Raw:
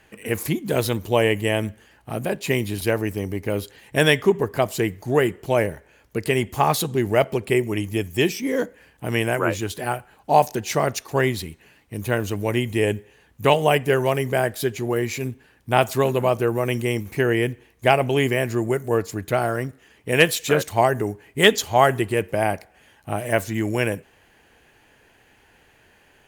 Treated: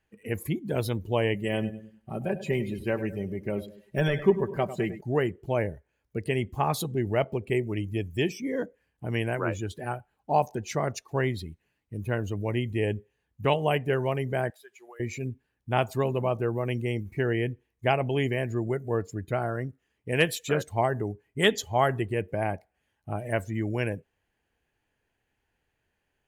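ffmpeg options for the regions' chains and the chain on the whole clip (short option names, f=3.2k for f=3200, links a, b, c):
-filter_complex "[0:a]asettb=1/sr,asplit=3[a][b][c];[a]atrim=end=1.344[d];[b]atrim=start=1.34:end=5.01,asetpts=PTS-STARTPTS,afade=t=in:d=0.004:c=qsin,afade=t=out:st=3.666:d=0.004:c=qsin,deesser=0.6,aecho=1:1:5.2:0.53,atrim=end_sample=161847,aecho=1:1:101|202|303|404|505:0.251|0.116|0.0532|0.0244|0.0112,atrim=end_sample=161847[e];[c]atrim=start=5.006[f];[d][e]acrossfade=d=0.004:c1=hsin:c2=qsin[g];[g][f]acrossfade=d=0.004:c1=qsin:c2=hsin,asettb=1/sr,asplit=3[h][i][j];[h]atrim=end=14.504[k];[i]atrim=start=14.5:end=15,asetpts=PTS-STARTPTS,afade=t=in:d=0.004:c=qsin,afade=t=out:st=0.496:d=0.004:c=qsin,highpass=920,acompressor=threshold=-35dB:ratio=4:attack=3.2:release=140:knee=1:detection=peak[l];[j]atrim=start=14.996[m];[k][l]acrossfade=d=0.004:c1=hsin:c2=qsin[n];[n][m]acrossfade=d=0.004:c1=qsin:c2=hsin,afftdn=nr=15:nf=-34,lowshelf=f=140:g=8,volume=-8dB"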